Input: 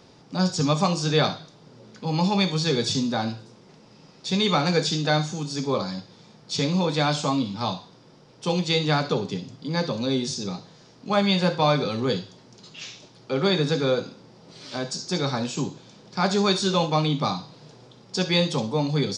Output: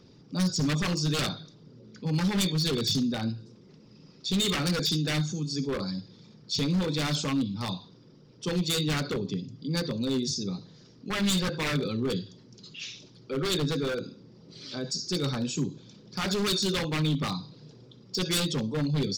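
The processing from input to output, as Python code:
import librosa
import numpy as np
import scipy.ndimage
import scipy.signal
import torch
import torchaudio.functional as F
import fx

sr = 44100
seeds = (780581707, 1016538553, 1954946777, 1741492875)

y = fx.envelope_sharpen(x, sr, power=1.5)
y = 10.0 ** (-19.0 / 20.0) * (np.abs((y / 10.0 ** (-19.0 / 20.0) + 3.0) % 4.0 - 2.0) - 1.0)
y = fx.peak_eq(y, sr, hz=740.0, db=-12.5, octaves=1.3)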